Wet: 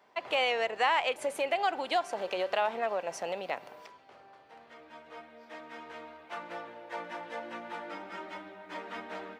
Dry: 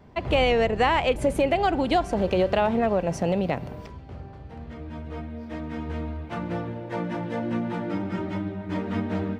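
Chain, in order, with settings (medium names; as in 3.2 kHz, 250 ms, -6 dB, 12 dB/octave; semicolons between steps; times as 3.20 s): high-pass 720 Hz 12 dB/octave; trim -3 dB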